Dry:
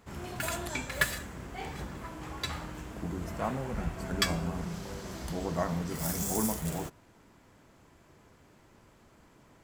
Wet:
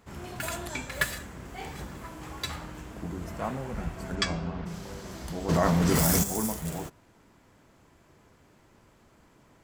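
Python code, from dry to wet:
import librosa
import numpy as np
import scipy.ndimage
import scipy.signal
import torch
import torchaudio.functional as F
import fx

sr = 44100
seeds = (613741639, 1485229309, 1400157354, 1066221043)

y = fx.high_shelf(x, sr, hz=6200.0, db=5.0, at=(1.45, 2.56))
y = fx.lowpass(y, sr, hz=fx.line((4.15, 8500.0), (4.65, 3900.0)), slope=24, at=(4.15, 4.65), fade=0.02)
y = fx.env_flatten(y, sr, amount_pct=100, at=(5.48, 6.22), fade=0.02)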